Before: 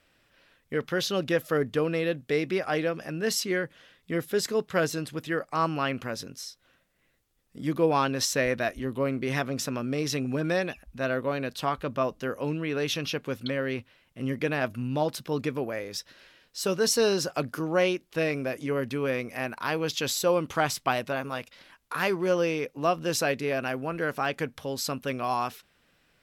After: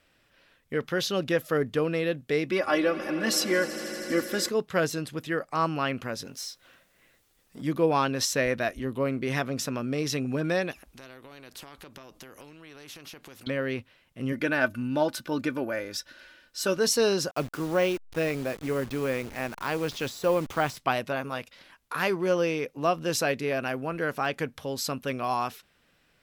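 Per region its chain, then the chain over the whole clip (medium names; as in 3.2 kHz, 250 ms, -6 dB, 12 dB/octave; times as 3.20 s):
2.51–4.49 s: peaking EQ 1.1 kHz +5.5 dB 0.36 oct + comb 3.5 ms, depth 90% + echo with a slow build-up 80 ms, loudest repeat 5, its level -18 dB
6.25–7.62 s: companding laws mixed up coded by mu + bass shelf 230 Hz -7.5 dB
10.71–13.47 s: peaking EQ 330 Hz +9 dB 0.9 oct + compression, threshold -34 dBFS + spectrum-flattening compressor 2:1
14.32–16.77 s: peaking EQ 1.5 kHz +10 dB 0.21 oct + comb 3.4 ms, depth 47%
17.31–20.77 s: send-on-delta sampling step -37.5 dBFS + de-esser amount 75%
whole clip: none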